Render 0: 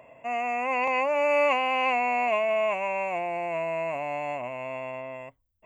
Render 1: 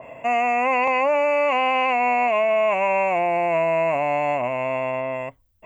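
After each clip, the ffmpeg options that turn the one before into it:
ffmpeg -i in.wav -filter_complex "[0:a]asplit=2[link_01][link_02];[link_02]acompressor=threshold=-35dB:ratio=6,volume=-3dB[link_03];[link_01][link_03]amix=inputs=2:normalize=0,alimiter=limit=-20dB:level=0:latency=1,adynamicequalizer=threshold=0.00794:dfrequency=2900:dqfactor=0.7:tfrequency=2900:tqfactor=0.7:attack=5:release=100:ratio=0.375:range=2.5:mode=cutabove:tftype=highshelf,volume=7dB" out.wav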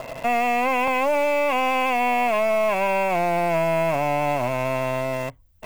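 ffmpeg -i in.wav -filter_complex "[0:a]acrossover=split=170[link_01][link_02];[link_02]acompressor=threshold=-50dB:ratio=1.5[link_03];[link_01][link_03]amix=inputs=2:normalize=0,asplit=2[link_04][link_05];[link_05]acrusher=bits=4:dc=4:mix=0:aa=0.000001,volume=-4dB[link_06];[link_04][link_06]amix=inputs=2:normalize=0,volume=7.5dB" out.wav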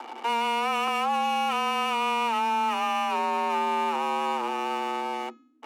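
ffmpeg -i in.wav -af "adynamicsmooth=sensitivity=7:basefreq=1800,afreqshift=230,bandreject=frequency=423.6:width_type=h:width=4,bandreject=frequency=847.2:width_type=h:width=4,bandreject=frequency=1270.8:width_type=h:width=4,bandreject=frequency=1694.4:width_type=h:width=4,bandreject=frequency=2118:width_type=h:width=4,bandreject=frequency=2541.6:width_type=h:width=4,bandreject=frequency=2965.2:width_type=h:width=4,bandreject=frequency=3388.8:width_type=h:width=4,bandreject=frequency=3812.4:width_type=h:width=4,bandreject=frequency=4236:width_type=h:width=4,bandreject=frequency=4659.6:width_type=h:width=4,bandreject=frequency=5083.2:width_type=h:width=4,bandreject=frequency=5506.8:width_type=h:width=4,bandreject=frequency=5930.4:width_type=h:width=4,bandreject=frequency=6354:width_type=h:width=4,bandreject=frequency=6777.6:width_type=h:width=4,bandreject=frequency=7201.2:width_type=h:width=4,volume=-5dB" out.wav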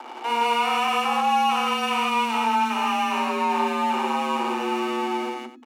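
ffmpeg -i in.wav -filter_complex "[0:a]asubboost=boost=9:cutoff=200,asplit=2[link_01][link_02];[link_02]aecho=0:1:55.39|166.2|259.5:0.794|1|0.251[link_03];[link_01][link_03]amix=inputs=2:normalize=0" out.wav

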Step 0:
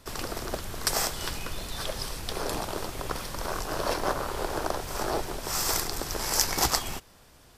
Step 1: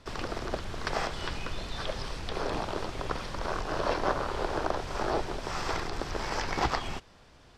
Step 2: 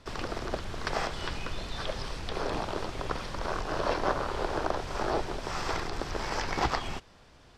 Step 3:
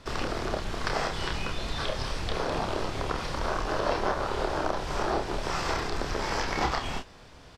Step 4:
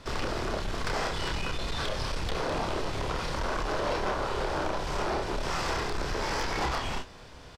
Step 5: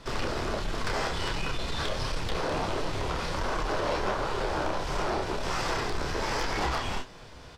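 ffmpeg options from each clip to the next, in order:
ffmpeg -i in.wav -filter_complex "[0:a]acrossover=split=3600[link_01][link_02];[link_02]acompressor=threshold=-38dB:ratio=4:attack=1:release=60[link_03];[link_01][link_03]amix=inputs=2:normalize=0,lowpass=4800" out.wav
ffmpeg -i in.wav -af anull out.wav
ffmpeg -i in.wav -filter_complex "[0:a]acompressor=threshold=-33dB:ratio=2,asplit=2[link_01][link_02];[link_02]aecho=0:1:29|48:0.596|0.237[link_03];[link_01][link_03]amix=inputs=2:normalize=0,volume=4.5dB" out.wav
ffmpeg -i in.wav -filter_complex "[0:a]asplit=2[link_01][link_02];[link_02]adelay=31,volume=-13dB[link_03];[link_01][link_03]amix=inputs=2:normalize=0,asoftclip=type=tanh:threshold=-26.5dB,volume=2dB" out.wav
ffmpeg -i in.wav -af "flanger=delay=5.6:depth=8.6:regen=-39:speed=1.4:shape=triangular,volume=4.5dB" out.wav

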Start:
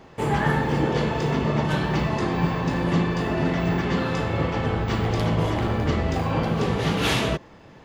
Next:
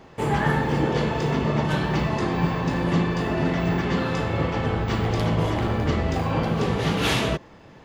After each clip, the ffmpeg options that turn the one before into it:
ffmpeg -i in.wav -af anull out.wav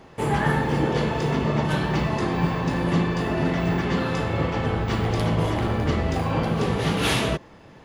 ffmpeg -i in.wav -af "equalizer=frequency=10000:width_type=o:width=0.2:gain=9.5" out.wav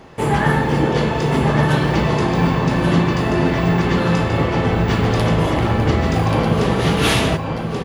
ffmpeg -i in.wav -af "aecho=1:1:1132:0.531,volume=5.5dB" out.wav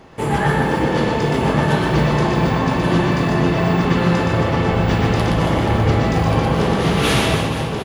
ffmpeg -i in.wav -af "aecho=1:1:120|276|478.8|742.4|1085:0.631|0.398|0.251|0.158|0.1,volume=-2dB" out.wav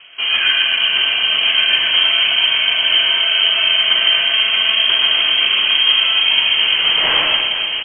ffmpeg -i in.wav -af "lowpass=frequency=2800:width_type=q:width=0.5098,lowpass=frequency=2800:width_type=q:width=0.6013,lowpass=frequency=2800:width_type=q:width=0.9,lowpass=frequency=2800:width_type=q:width=2.563,afreqshift=-3300,volume=2dB" out.wav

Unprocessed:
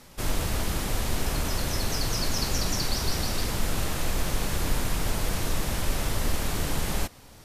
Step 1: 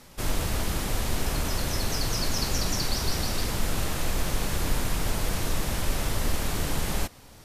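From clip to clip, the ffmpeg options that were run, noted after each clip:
ffmpeg -i in.wav -af anull out.wav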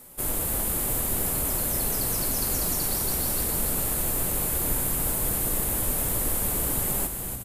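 ffmpeg -i in.wav -filter_complex "[0:a]aexciter=amount=6.4:drive=7.3:freq=7900,equalizer=frequency=440:width_type=o:width=2.8:gain=6.5,asplit=8[link_01][link_02][link_03][link_04][link_05][link_06][link_07][link_08];[link_02]adelay=288,afreqshift=-68,volume=-7dB[link_09];[link_03]adelay=576,afreqshift=-136,volume=-11.7dB[link_10];[link_04]adelay=864,afreqshift=-204,volume=-16.5dB[link_11];[link_05]adelay=1152,afreqshift=-272,volume=-21.2dB[link_12];[link_06]adelay=1440,afreqshift=-340,volume=-25.9dB[link_13];[link_07]adelay=1728,afreqshift=-408,volume=-30.7dB[link_14];[link_08]adelay=2016,afreqshift=-476,volume=-35.4dB[link_15];[link_01][link_09][link_10][link_11][link_12][link_13][link_14][link_15]amix=inputs=8:normalize=0,volume=-7dB" out.wav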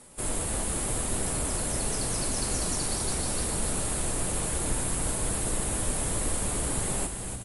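ffmpeg -i in.wav -ar 24000 -c:a libmp3lame -b:a 56k out.mp3

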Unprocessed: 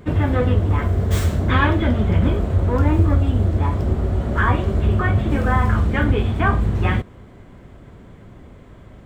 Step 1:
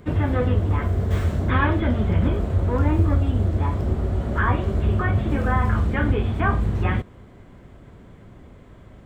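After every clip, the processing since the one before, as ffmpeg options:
ffmpeg -i in.wav -filter_complex "[0:a]acrossover=split=2900[link_01][link_02];[link_02]acompressor=threshold=-45dB:ratio=4:attack=1:release=60[link_03];[link_01][link_03]amix=inputs=2:normalize=0,volume=-3dB" out.wav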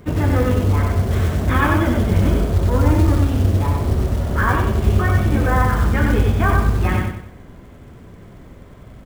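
ffmpeg -i in.wav -af "acrusher=bits=6:mode=log:mix=0:aa=0.000001,aecho=1:1:94|188|282|376|470:0.708|0.276|0.108|0.042|0.0164,volume=2.5dB" out.wav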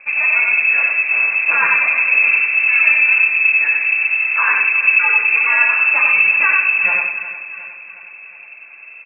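ffmpeg -i in.wav -af "aecho=1:1:361|722|1083|1444|1805|2166:0.211|0.116|0.0639|0.0352|0.0193|0.0106,lowpass=frequency=2300:width_type=q:width=0.5098,lowpass=frequency=2300:width_type=q:width=0.6013,lowpass=frequency=2300:width_type=q:width=0.9,lowpass=frequency=2300:width_type=q:width=2.563,afreqshift=-2700,volume=1dB" out.wav

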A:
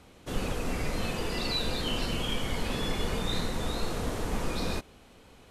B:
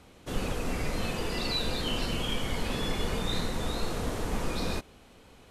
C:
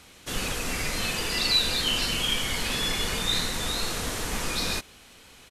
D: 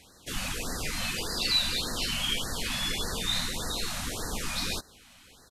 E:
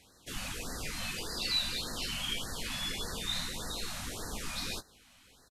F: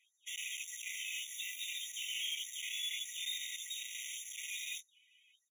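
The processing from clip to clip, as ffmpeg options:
ffmpeg -i in.wav -af anull out.wav
ffmpeg -i in.wav -af "firequalizer=gain_entry='entry(540,0);entry(1700,9);entry(5700,13)':delay=0.05:min_phase=1,volume=-1.5dB" out.wav
ffmpeg -i in.wav -af "afftfilt=real='re*(1-between(b*sr/1024,360*pow(2800/360,0.5+0.5*sin(2*PI*1.7*pts/sr))/1.41,360*pow(2800/360,0.5+0.5*sin(2*PI*1.7*pts/sr))*1.41))':imag='im*(1-between(b*sr/1024,360*pow(2800/360,0.5+0.5*sin(2*PI*1.7*pts/sr))/1.41,360*pow(2800/360,0.5+0.5*sin(2*PI*1.7*pts/sr))*1.41))':win_size=1024:overlap=0.75,volume=-3dB" out.wav
ffmpeg -i in.wav -filter_complex "[0:a]asplit=2[link_01][link_02];[link_02]adelay=19,volume=-12.5dB[link_03];[link_01][link_03]amix=inputs=2:normalize=0,volume=-6dB" out.wav
ffmpeg -i in.wav -af "afftdn=noise_reduction=17:noise_floor=-57,aeval=exprs='(tanh(158*val(0)+0.75)-tanh(0.75))/158':channel_layout=same,afftfilt=real='re*eq(mod(floor(b*sr/1024/1900),2),1)':imag='im*eq(mod(floor(b*sr/1024/1900),2),1)':win_size=1024:overlap=0.75,volume=9dB" out.wav

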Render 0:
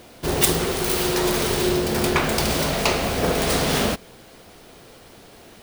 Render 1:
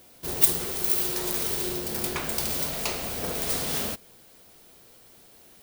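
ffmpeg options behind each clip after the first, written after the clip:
ffmpeg -i in.wav -af "aemphasis=mode=production:type=50kf,volume=-12.5dB" out.wav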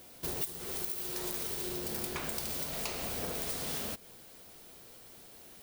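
ffmpeg -i in.wav -af "acompressor=threshold=-33dB:ratio=10" out.wav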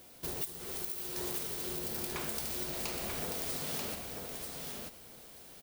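ffmpeg -i in.wav -af "aecho=1:1:937|1874|2811:0.631|0.101|0.0162,volume=-2dB" out.wav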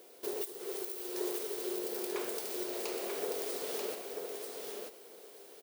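ffmpeg -i in.wav -af "highpass=frequency=410:width_type=q:width=4.9,volume=-3dB" out.wav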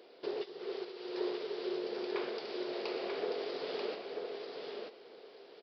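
ffmpeg -i in.wav -af "aresample=11025,aresample=44100,volume=1dB" out.wav

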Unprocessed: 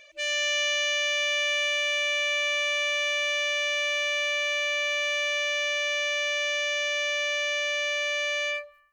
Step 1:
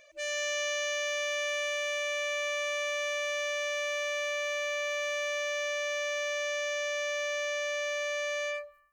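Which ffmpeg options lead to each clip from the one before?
ffmpeg -i in.wav -af "equalizer=frequency=3000:width_type=o:width=1.5:gain=-10" out.wav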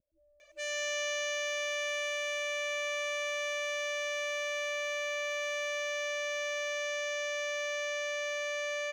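ffmpeg -i in.wav -filter_complex "[0:a]acrossover=split=270[link_01][link_02];[link_02]adelay=400[link_03];[link_01][link_03]amix=inputs=2:normalize=0,volume=-2dB" out.wav

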